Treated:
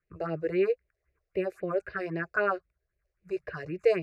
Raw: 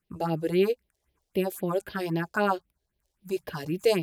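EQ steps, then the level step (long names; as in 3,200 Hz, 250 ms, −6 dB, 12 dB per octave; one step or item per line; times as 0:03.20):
low-pass with resonance 2,800 Hz, resonance Q 1.5
phaser with its sweep stopped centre 890 Hz, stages 6
0.0 dB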